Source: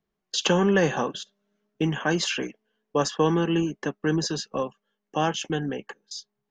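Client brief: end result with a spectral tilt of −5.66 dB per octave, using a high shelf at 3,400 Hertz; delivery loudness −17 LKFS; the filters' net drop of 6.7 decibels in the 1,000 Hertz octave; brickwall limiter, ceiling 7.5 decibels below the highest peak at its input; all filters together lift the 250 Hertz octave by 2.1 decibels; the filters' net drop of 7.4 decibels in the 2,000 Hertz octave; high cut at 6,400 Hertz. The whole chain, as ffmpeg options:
ffmpeg -i in.wav -af "lowpass=6400,equalizer=frequency=250:width_type=o:gain=4,equalizer=frequency=1000:width_type=o:gain=-7.5,equalizer=frequency=2000:width_type=o:gain=-6.5,highshelf=frequency=3400:gain=-3,volume=12dB,alimiter=limit=-5.5dB:level=0:latency=1" out.wav

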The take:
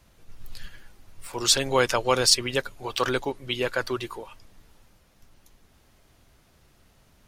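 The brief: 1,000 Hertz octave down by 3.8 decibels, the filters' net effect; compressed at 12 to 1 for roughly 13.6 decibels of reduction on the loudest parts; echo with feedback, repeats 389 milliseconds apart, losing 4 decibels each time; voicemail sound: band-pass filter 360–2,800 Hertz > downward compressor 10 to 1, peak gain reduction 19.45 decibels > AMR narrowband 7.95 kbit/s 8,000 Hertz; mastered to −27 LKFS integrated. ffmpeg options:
ffmpeg -i in.wav -af "equalizer=frequency=1000:width_type=o:gain=-4.5,acompressor=threshold=-28dB:ratio=12,highpass=360,lowpass=2800,aecho=1:1:389|778|1167|1556|1945|2334|2723|3112|3501:0.631|0.398|0.25|0.158|0.0994|0.0626|0.0394|0.0249|0.0157,acompressor=threshold=-48dB:ratio=10,volume=27.5dB" -ar 8000 -c:a libopencore_amrnb -b:a 7950 out.amr

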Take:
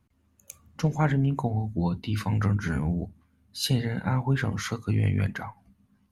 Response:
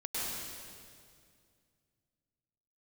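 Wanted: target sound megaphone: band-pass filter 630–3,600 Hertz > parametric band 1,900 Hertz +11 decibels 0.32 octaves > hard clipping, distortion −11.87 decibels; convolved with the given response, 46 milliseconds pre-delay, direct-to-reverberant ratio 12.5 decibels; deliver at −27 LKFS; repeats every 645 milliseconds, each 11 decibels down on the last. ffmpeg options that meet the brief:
-filter_complex "[0:a]aecho=1:1:645|1290|1935:0.282|0.0789|0.0221,asplit=2[link_01][link_02];[1:a]atrim=start_sample=2205,adelay=46[link_03];[link_02][link_03]afir=irnorm=-1:irlink=0,volume=-17dB[link_04];[link_01][link_04]amix=inputs=2:normalize=0,highpass=630,lowpass=3600,equalizer=frequency=1900:width_type=o:width=0.32:gain=11,asoftclip=type=hard:threshold=-26dB,volume=8.5dB"

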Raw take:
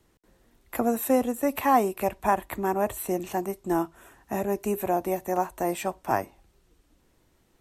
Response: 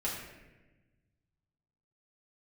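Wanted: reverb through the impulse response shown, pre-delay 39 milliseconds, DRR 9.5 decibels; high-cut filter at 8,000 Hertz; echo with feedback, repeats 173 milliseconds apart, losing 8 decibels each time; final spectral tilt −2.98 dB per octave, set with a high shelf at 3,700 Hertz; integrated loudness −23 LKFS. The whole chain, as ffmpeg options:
-filter_complex "[0:a]lowpass=8000,highshelf=frequency=3700:gain=-6,aecho=1:1:173|346|519|692|865:0.398|0.159|0.0637|0.0255|0.0102,asplit=2[link_01][link_02];[1:a]atrim=start_sample=2205,adelay=39[link_03];[link_02][link_03]afir=irnorm=-1:irlink=0,volume=-14dB[link_04];[link_01][link_04]amix=inputs=2:normalize=0,volume=3.5dB"

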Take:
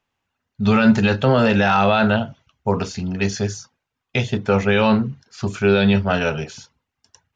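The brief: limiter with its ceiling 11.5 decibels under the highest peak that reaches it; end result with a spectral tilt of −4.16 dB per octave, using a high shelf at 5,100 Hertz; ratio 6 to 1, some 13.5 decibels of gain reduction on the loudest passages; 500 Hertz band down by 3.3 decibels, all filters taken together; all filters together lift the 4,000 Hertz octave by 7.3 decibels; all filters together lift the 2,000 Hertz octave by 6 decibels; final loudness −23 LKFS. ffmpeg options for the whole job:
ffmpeg -i in.wav -af "equalizer=frequency=500:width_type=o:gain=-4.5,equalizer=frequency=2000:width_type=o:gain=6.5,equalizer=frequency=4000:width_type=o:gain=4.5,highshelf=frequency=5100:gain=6,acompressor=threshold=-24dB:ratio=6,volume=6dB,alimiter=limit=-12.5dB:level=0:latency=1" out.wav

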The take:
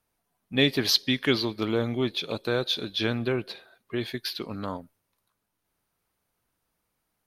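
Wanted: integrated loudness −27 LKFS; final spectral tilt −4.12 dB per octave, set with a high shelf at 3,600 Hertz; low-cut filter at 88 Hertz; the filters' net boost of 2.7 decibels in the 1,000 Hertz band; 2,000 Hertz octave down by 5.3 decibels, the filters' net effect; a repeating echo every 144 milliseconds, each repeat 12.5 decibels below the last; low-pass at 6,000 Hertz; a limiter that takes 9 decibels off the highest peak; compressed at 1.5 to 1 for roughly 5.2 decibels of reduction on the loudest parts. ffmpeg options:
ffmpeg -i in.wav -af "highpass=88,lowpass=6000,equalizer=frequency=1000:width_type=o:gain=6,equalizer=frequency=2000:width_type=o:gain=-7,highshelf=frequency=3600:gain=-5.5,acompressor=threshold=-32dB:ratio=1.5,alimiter=limit=-23.5dB:level=0:latency=1,aecho=1:1:144|288|432:0.237|0.0569|0.0137,volume=8.5dB" out.wav

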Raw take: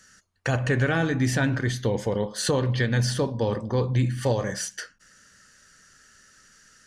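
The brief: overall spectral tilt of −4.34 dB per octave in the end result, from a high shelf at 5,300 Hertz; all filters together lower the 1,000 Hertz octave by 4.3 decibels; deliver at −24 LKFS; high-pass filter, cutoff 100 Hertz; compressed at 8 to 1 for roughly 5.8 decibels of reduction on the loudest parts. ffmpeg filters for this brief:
ffmpeg -i in.wav -af "highpass=100,equalizer=frequency=1000:width_type=o:gain=-6,highshelf=frequency=5300:gain=7,acompressor=threshold=-25dB:ratio=8,volume=6dB" out.wav

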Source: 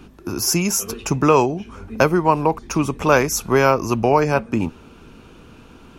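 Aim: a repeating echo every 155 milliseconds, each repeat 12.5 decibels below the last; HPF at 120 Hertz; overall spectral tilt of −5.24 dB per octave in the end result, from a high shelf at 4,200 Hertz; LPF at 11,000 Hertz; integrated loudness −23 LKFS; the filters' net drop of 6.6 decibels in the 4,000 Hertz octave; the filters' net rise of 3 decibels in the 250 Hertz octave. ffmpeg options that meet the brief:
ffmpeg -i in.wav -af "highpass=120,lowpass=11000,equalizer=frequency=250:width_type=o:gain=4.5,equalizer=frequency=4000:width_type=o:gain=-6,highshelf=frequency=4200:gain=-5,aecho=1:1:155|310|465:0.237|0.0569|0.0137,volume=-5dB" out.wav

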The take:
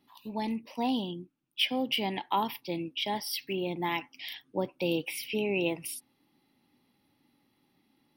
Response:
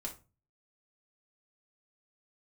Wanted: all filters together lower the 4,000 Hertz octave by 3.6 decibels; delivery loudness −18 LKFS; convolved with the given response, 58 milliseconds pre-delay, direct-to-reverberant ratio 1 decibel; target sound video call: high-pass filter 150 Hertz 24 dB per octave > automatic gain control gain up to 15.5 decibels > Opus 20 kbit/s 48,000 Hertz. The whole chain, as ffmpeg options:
-filter_complex "[0:a]equalizer=frequency=4000:width_type=o:gain=-5.5,asplit=2[link_01][link_02];[1:a]atrim=start_sample=2205,adelay=58[link_03];[link_02][link_03]afir=irnorm=-1:irlink=0,volume=0dB[link_04];[link_01][link_04]amix=inputs=2:normalize=0,highpass=frequency=150:width=0.5412,highpass=frequency=150:width=1.3066,dynaudnorm=maxgain=15.5dB,volume=12dB" -ar 48000 -c:a libopus -b:a 20k

